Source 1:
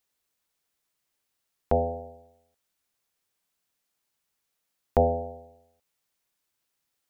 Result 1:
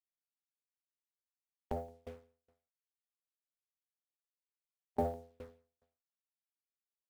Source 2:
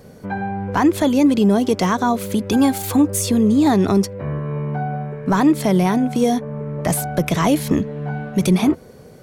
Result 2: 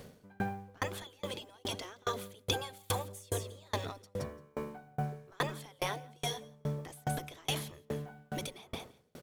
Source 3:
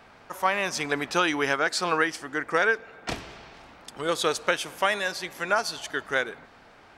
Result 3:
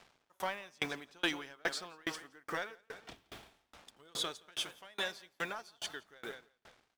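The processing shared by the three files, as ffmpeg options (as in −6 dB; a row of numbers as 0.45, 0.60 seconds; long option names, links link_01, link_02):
-filter_complex "[0:a]afftfilt=real='re*lt(hypot(re,im),0.562)':imag='im*lt(hypot(re,im),0.562)':win_size=1024:overlap=0.75,equalizer=frequency=3400:width=4.3:gain=7,asplit=2[link_01][link_02];[link_02]asoftclip=type=hard:threshold=-22dB,volume=-3.5dB[link_03];[link_01][link_03]amix=inputs=2:normalize=0,acrusher=bits=6:mix=0:aa=0.5,asplit=2[link_04][link_05];[link_05]aecho=0:1:171|342|513:0.237|0.0735|0.0228[link_06];[link_04][link_06]amix=inputs=2:normalize=0,aeval=exprs='val(0)*pow(10,-35*if(lt(mod(2.4*n/s,1),2*abs(2.4)/1000),1-mod(2.4*n/s,1)/(2*abs(2.4)/1000),(mod(2.4*n/s,1)-2*abs(2.4)/1000)/(1-2*abs(2.4)/1000))/20)':channel_layout=same,volume=-8dB"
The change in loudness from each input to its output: −13.5, −20.5, −13.5 LU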